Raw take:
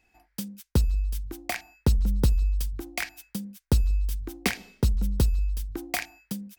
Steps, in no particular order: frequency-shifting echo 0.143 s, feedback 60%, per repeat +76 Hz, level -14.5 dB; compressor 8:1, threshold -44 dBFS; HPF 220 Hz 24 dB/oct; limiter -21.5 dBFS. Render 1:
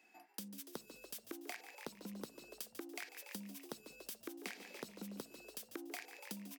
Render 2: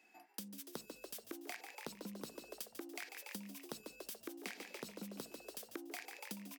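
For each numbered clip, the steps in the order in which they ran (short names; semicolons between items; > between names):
limiter > HPF > frequency-shifting echo > compressor; HPF > frequency-shifting echo > limiter > compressor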